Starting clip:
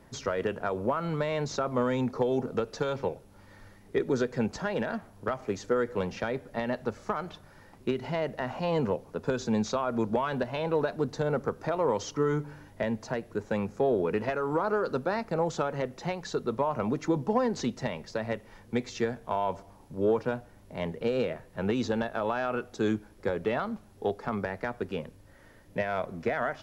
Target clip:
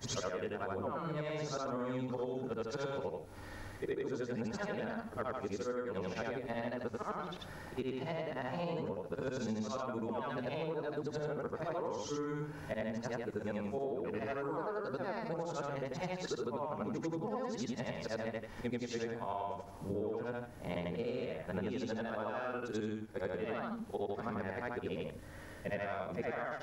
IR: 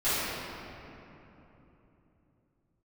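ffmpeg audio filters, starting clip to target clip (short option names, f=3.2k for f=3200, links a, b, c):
-af "afftfilt=real='re':imag='-im':win_size=8192:overlap=0.75,acompressor=threshold=-45dB:ratio=12,volume=10dB"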